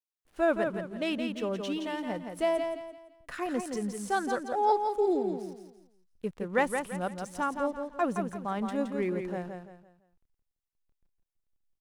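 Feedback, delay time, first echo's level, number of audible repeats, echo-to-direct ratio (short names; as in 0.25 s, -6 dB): 34%, 0.169 s, -6.0 dB, 4, -5.5 dB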